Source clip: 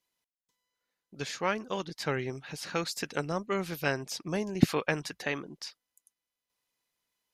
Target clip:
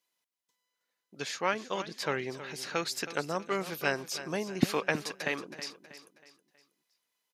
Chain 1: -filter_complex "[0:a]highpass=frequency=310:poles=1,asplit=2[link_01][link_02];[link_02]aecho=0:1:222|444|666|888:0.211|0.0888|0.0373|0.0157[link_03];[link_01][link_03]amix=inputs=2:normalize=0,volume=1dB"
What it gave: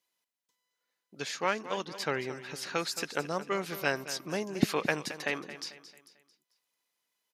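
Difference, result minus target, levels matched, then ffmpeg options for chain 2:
echo 98 ms early
-filter_complex "[0:a]highpass=frequency=310:poles=1,asplit=2[link_01][link_02];[link_02]aecho=0:1:320|640|960|1280:0.211|0.0888|0.0373|0.0157[link_03];[link_01][link_03]amix=inputs=2:normalize=0,volume=1dB"

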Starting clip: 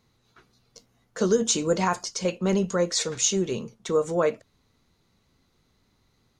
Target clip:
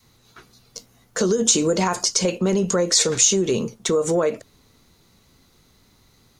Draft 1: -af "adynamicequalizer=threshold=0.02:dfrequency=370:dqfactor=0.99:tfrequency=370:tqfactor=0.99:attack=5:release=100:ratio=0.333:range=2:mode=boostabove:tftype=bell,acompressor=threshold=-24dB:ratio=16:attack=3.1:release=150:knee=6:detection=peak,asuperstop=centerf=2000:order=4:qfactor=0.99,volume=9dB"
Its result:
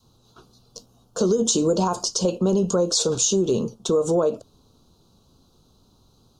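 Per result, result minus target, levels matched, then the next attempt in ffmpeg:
2,000 Hz band −12.0 dB; 8,000 Hz band −3.0 dB
-af "adynamicequalizer=threshold=0.02:dfrequency=370:dqfactor=0.99:tfrequency=370:tqfactor=0.99:attack=5:release=100:ratio=0.333:range=2:mode=boostabove:tftype=bell,acompressor=threshold=-24dB:ratio=16:attack=3.1:release=150:knee=6:detection=peak,volume=9dB"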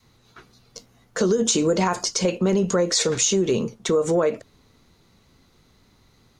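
8,000 Hz band −3.5 dB
-af "adynamicequalizer=threshold=0.02:dfrequency=370:dqfactor=0.99:tfrequency=370:tqfactor=0.99:attack=5:release=100:ratio=0.333:range=2:mode=boostabove:tftype=bell,acompressor=threshold=-24dB:ratio=16:attack=3.1:release=150:knee=6:detection=peak,highshelf=frequency=6400:gain=10,volume=9dB"

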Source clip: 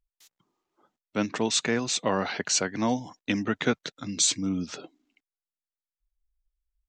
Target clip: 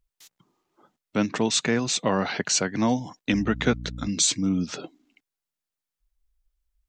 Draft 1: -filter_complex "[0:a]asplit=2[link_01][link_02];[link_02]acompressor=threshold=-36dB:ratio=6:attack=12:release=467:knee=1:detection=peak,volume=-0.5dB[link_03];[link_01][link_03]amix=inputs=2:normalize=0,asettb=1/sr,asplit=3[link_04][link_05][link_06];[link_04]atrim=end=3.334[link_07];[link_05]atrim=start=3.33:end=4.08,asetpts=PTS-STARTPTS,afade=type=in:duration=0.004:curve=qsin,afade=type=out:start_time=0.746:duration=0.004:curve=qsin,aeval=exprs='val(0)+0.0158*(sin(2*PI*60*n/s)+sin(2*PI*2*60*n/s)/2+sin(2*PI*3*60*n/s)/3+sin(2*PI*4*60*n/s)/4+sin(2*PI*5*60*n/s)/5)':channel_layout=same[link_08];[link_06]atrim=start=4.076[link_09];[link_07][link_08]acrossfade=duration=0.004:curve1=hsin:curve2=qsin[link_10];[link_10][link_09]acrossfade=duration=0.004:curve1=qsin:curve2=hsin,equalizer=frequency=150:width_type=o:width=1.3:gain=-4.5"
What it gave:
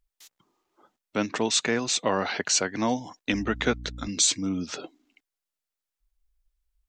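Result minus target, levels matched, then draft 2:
125 Hz band −5.0 dB
-filter_complex "[0:a]asplit=2[link_01][link_02];[link_02]acompressor=threshold=-36dB:ratio=6:attack=12:release=467:knee=1:detection=peak,volume=-0.5dB[link_03];[link_01][link_03]amix=inputs=2:normalize=0,asettb=1/sr,asplit=3[link_04][link_05][link_06];[link_04]atrim=end=3.334[link_07];[link_05]atrim=start=3.33:end=4.08,asetpts=PTS-STARTPTS,afade=type=in:duration=0.004:curve=qsin,afade=type=out:start_time=0.746:duration=0.004:curve=qsin,aeval=exprs='val(0)+0.0158*(sin(2*PI*60*n/s)+sin(2*PI*2*60*n/s)/2+sin(2*PI*3*60*n/s)/3+sin(2*PI*4*60*n/s)/4+sin(2*PI*5*60*n/s)/5)':channel_layout=same[link_08];[link_06]atrim=start=4.076[link_09];[link_07][link_08]acrossfade=duration=0.004:curve1=hsin:curve2=qsin[link_10];[link_10][link_09]acrossfade=duration=0.004:curve1=qsin:curve2=hsin,equalizer=frequency=150:width_type=o:width=1.3:gain=4.5"

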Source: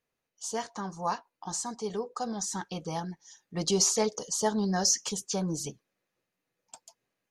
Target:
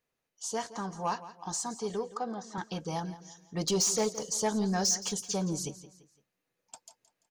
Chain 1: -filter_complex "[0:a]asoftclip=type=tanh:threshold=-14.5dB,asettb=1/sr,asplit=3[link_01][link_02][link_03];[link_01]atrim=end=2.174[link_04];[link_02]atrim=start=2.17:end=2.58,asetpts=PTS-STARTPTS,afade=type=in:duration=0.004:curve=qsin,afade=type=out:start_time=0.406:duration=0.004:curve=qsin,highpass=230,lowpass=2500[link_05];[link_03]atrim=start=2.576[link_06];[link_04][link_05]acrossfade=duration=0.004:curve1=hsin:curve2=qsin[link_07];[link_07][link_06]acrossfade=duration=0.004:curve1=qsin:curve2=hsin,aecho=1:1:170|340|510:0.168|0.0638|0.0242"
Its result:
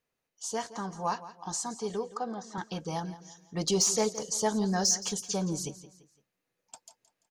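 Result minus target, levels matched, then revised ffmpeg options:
soft clipping: distortion −9 dB
-filter_complex "[0:a]asoftclip=type=tanh:threshold=-21dB,asettb=1/sr,asplit=3[link_01][link_02][link_03];[link_01]atrim=end=2.174[link_04];[link_02]atrim=start=2.17:end=2.58,asetpts=PTS-STARTPTS,afade=type=in:duration=0.004:curve=qsin,afade=type=out:start_time=0.406:duration=0.004:curve=qsin,highpass=230,lowpass=2500[link_05];[link_03]atrim=start=2.576[link_06];[link_04][link_05]acrossfade=duration=0.004:curve1=hsin:curve2=qsin[link_07];[link_07][link_06]acrossfade=duration=0.004:curve1=qsin:curve2=hsin,aecho=1:1:170|340|510:0.168|0.0638|0.0242"

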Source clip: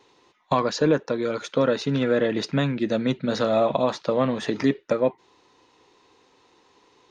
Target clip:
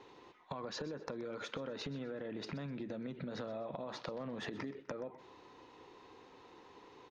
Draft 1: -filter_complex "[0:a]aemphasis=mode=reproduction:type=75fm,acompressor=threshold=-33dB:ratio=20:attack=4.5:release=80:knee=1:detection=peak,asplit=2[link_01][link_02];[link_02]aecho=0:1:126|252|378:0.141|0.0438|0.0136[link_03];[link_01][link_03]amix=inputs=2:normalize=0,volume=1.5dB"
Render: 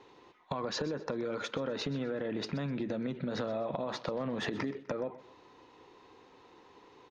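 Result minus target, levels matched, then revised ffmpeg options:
downward compressor: peak gain reduction −7.5 dB
-filter_complex "[0:a]aemphasis=mode=reproduction:type=75fm,acompressor=threshold=-41dB:ratio=20:attack=4.5:release=80:knee=1:detection=peak,asplit=2[link_01][link_02];[link_02]aecho=0:1:126|252|378:0.141|0.0438|0.0136[link_03];[link_01][link_03]amix=inputs=2:normalize=0,volume=1.5dB"

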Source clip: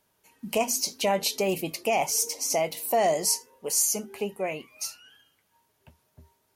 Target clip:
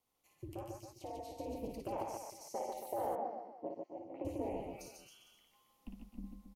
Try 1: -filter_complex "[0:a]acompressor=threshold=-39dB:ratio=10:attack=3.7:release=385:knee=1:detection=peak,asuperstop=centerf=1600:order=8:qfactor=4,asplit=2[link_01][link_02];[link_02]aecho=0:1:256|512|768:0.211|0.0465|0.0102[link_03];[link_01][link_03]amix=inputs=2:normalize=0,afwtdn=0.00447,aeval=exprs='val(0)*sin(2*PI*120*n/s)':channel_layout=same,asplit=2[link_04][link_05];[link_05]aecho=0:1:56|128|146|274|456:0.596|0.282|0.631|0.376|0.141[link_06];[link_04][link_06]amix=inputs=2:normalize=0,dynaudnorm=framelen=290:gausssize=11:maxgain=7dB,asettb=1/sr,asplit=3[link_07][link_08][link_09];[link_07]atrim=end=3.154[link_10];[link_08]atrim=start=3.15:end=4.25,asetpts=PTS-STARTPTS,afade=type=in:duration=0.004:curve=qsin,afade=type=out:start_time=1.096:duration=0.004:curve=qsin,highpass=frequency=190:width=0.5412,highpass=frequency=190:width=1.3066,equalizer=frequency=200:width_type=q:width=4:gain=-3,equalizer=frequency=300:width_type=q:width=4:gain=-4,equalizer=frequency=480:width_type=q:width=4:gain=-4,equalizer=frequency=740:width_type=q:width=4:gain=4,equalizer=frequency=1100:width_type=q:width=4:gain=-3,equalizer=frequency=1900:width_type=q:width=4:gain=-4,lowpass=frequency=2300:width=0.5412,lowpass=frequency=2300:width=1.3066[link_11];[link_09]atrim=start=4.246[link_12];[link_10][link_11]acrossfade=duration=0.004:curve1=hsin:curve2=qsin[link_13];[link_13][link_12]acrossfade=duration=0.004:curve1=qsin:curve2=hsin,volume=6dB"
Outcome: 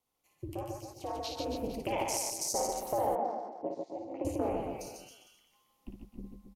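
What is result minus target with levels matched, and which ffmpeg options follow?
downward compressor: peak gain reduction −6.5 dB
-filter_complex "[0:a]acompressor=threshold=-46dB:ratio=10:attack=3.7:release=385:knee=1:detection=peak,asuperstop=centerf=1600:order=8:qfactor=4,asplit=2[link_01][link_02];[link_02]aecho=0:1:256|512|768:0.211|0.0465|0.0102[link_03];[link_01][link_03]amix=inputs=2:normalize=0,afwtdn=0.00447,aeval=exprs='val(0)*sin(2*PI*120*n/s)':channel_layout=same,asplit=2[link_04][link_05];[link_05]aecho=0:1:56|128|146|274|456:0.596|0.282|0.631|0.376|0.141[link_06];[link_04][link_06]amix=inputs=2:normalize=0,dynaudnorm=framelen=290:gausssize=11:maxgain=7dB,asettb=1/sr,asplit=3[link_07][link_08][link_09];[link_07]atrim=end=3.154[link_10];[link_08]atrim=start=3.15:end=4.25,asetpts=PTS-STARTPTS,afade=type=in:duration=0.004:curve=qsin,afade=type=out:start_time=1.096:duration=0.004:curve=qsin,highpass=frequency=190:width=0.5412,highpass=frequency=190:width=1.3066,equalizer=frequency=200:width_type=q:width=4:gain=-3,equalizer=frequency=300:width_type=q:width=4:gain=-4,equalizer=frequency=480:width_type=q:width=4:gain=-4,equalizer=frequency=740:width_type=q:width=4:gain=4,equalizer=frequency=1100:width_type=q:width=4:gain=-3,equalizer=frequency=1900:width_type=q:width=4:gain=-4,lowpass=frequency=2300:width=0.5412,lowpass=frequency=2300:width=1.3066[link_11];[link_09]atrim=start=4.246[link_12];[link_10][link_11]acrossfade=duration=0.004:curve1=hsin:curve2=qsin[link_13];[link_13][link_12]acrossfade=duration=0.004:curve1=qsin:curve2=hsin,volume=6dB"

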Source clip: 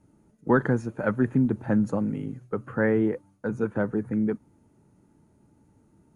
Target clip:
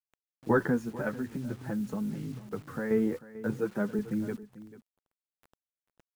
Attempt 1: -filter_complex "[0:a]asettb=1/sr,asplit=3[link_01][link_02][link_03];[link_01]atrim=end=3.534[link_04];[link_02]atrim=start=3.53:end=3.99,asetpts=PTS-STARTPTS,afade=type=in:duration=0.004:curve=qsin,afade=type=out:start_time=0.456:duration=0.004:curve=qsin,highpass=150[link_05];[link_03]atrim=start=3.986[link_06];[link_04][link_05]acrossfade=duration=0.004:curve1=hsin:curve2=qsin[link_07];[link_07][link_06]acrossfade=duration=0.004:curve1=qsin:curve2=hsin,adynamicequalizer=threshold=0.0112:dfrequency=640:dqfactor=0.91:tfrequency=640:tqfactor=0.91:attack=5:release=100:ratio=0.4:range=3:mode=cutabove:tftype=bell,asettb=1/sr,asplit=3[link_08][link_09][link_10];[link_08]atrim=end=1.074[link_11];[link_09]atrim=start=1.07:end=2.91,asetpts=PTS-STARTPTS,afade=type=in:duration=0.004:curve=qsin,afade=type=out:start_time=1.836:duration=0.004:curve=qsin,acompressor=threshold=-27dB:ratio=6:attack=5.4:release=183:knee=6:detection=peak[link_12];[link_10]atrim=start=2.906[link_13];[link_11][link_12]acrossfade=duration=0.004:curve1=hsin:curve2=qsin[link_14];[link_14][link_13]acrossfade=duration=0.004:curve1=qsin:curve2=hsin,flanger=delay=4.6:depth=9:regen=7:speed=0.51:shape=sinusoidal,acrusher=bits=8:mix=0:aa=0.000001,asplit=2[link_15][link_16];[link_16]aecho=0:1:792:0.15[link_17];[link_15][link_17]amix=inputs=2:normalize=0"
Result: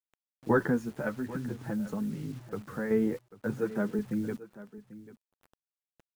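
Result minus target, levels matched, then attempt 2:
echo 350 ms late
-filter_complex "[0:a]asettb=1/sr,asplit=3[link_01][link_02][link_03];[link_01]atrim=end=3.534[link_04];[link_02]atrim=start=3.53:end=3.99,asetpts=PTS-STARTPTS,afade=type=in:duration=0.004:curve=qsin,afade=type=out:start_time=0.456:duration=0.004:curve=qsin,highpass=150[link_05];[link_03]atrim=start=3.986[link_06];[link_04][link_05]acrossfade=duration=0.004:curve1=hsin:curve2=qsin[link_07];[link_07][link_06]acrossfade=duration=0.004:curve1=qsin:curve2=hsin,adynamicequalizer=threshold=0.0112:dfrequency=640:dqfactor=0.91:tfrequency=640:tqfactor=0.91:attack=5:release=100:ratio=0.4:range=3:mode=cutabove:tftype=bell,asettb=1/sr,asplit=3[link_08][link_09][link_10];[link_08]atrim=end=1.074[link_11];[link_09]atrim=start=1.07:end=2.91,asetpts=PTS-STARTPTS,afade=type=in:duration=0.004:curve=qsin,afade=type=out:start_time=1.836:duration=0.004:curve=qsin,acompressor=threshold=-27dB:ratio=6:attack=5.4:release=183:knee=6:detection=peak[link_12];[link_10]atrim=start=2.906[link_13];[link_11][link_12]acrossfade=duration=0.004:curve1=hsin:curve2=qsin[link_14];[link_14][link_13]acrossfade=duration=0.004:curve1=qsin:curve2=hsin,flanger=delay=4.6:depth=9:regen=7:speed=0.51:shape=sinusoidal,acrusher=bits=8:mix=0:aa=0.000001,asplit=2[link_15][link_16];[link_16]aecho=0:1:442:0.15[link_17];[link_15][link_17]amix=inputs=2:normalize=0"

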